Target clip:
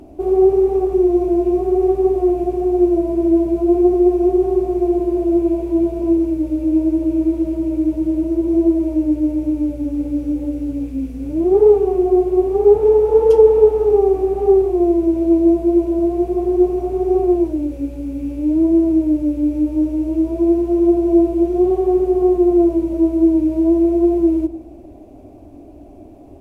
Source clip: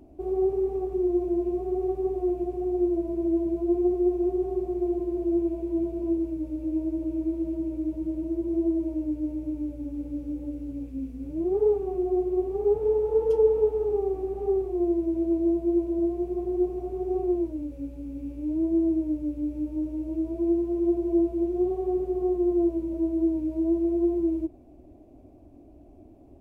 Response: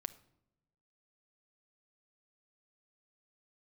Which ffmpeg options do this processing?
-filter_complex "[0:a]asplit=2[link_01][link_02];[link_02]lowshelf=frequency=310:gain=-9[link_03];[1:a]atrim=start_sample=2205,asetrate=26460,aresample=44100[link_04];[link_03][link_04]afir=irnorm=-1:irlink=0,volume=9.5dB[link_05];[link_01][link_05]amix=inputs=2:normalize=0,volume=2.5dB"

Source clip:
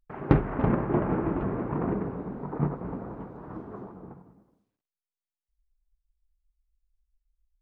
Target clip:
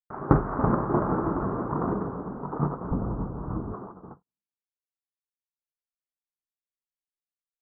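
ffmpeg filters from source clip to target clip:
ffmpeg -i in.wav -filter_complex "[0:a]asettb=1/sr,asplit=3[link_01][link_02][link_03];[link_01]atrim=end=2.914[link_04];[link_02]atrim=start=2.91:end=3.74,asetpts=PTS-STARTPTS,afade=type=in:duration=0.004:curve=qsin,afade=type=out:start_time=0.826:duration=0.004:curve=qsin,aemphasis=mode=reproduction:type=riaa[link_05];[link_03]atrim=start=3.736[link_06];[link_04][link_05]acrossfade=duration=0.004:curve1=hsin:curve2=qsin[link_07];[link_07][link_06]acrossfade=duration=0.004:curve1=qsin:curve2=hsin,agate=range=-47dB:threshold=-44dB:ratio=16:detection=peak,highshelf=frequency=1800:width_type=q:width=3:gain=-12.5" out.wav

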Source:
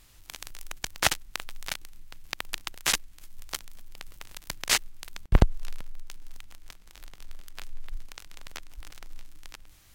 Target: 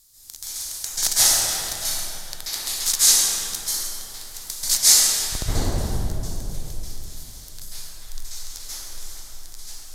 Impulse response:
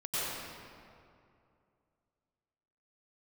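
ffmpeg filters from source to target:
-filter_complex "[1:a]atrim=start_sample=2205,asetrate=29547,aresample=44100[link_01];[0:a][link_01]afir=irnorm=-1:irlink=0,aexciter=amount=13.7:drive=2.3:freq=4000,highshelf=frequency=5500:gain=-5.5,volume=-9dB"

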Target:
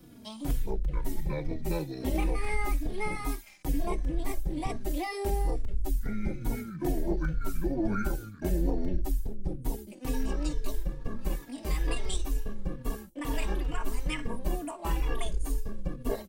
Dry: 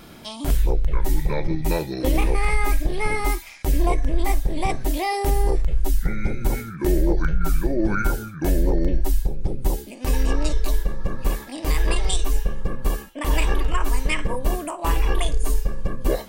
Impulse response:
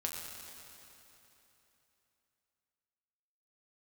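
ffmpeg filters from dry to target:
-filter_complex "[0:a]equalizer=frequency=230:width_type=o:width=1.2:gain=6,acrossover=split=140|550|6200[link_01][link_02][link_03][link_04];[link_02]aeval=exprs='0.282*(cos(1*acos(clip(val(0)/0.282,-1,1)))-cos(1*PI/2))+0.112*(cos(2*acos(clip(val(0)/0.282,-1,1)))-cos(2*PI/2))':channel_layout=same[link_05];[link_03]aeval=exprs='sgn(val(0))*max(abs(val(0))-0.00266,0)':channel_layout=same[link_06];[link_01][link_05][link_06][link_04]amix=inputs=4:normalize=0,asplit=2[link_07][link_08];[link_08]adelay=3.5,afreqshift=-2.2[link_09];[link_07][link_09]amix=inputs=2:normalize=1,volume=-7dB"

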